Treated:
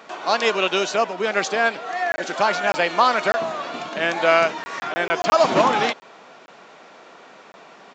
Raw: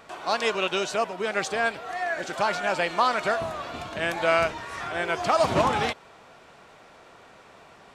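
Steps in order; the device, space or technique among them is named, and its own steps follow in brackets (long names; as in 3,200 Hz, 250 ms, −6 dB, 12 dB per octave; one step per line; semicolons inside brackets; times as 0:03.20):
call with lost packets (high-pass filter 180 Hz 24 dB per octave; downsampling to 16,000 Hz; dropped packets of 20 ms)
level +5.5 dB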